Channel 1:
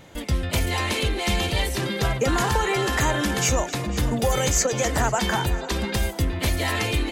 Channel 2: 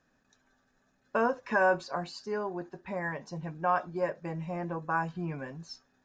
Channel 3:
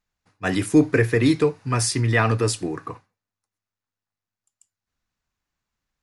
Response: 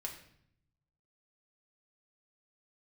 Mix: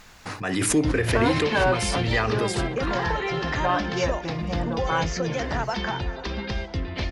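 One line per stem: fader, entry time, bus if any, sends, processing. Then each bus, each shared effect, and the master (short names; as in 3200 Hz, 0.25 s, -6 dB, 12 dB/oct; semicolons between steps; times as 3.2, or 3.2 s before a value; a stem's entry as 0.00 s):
-5.0 dB, 0.55 s, send -12 dB, Chebyshev low-pass 5400 Hz, order 4
+1.0 dB, 0.00 s, no send, sample leveller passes 1
-5.0 dB, 0.00 s, send -20 dB, low shelf 240 Hz -5.5 dB; backwards sustainer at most 34 dB/s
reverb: on, RT60 0.65 s, pre-delay 5 ms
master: high shelf 8900 Hz -7 dB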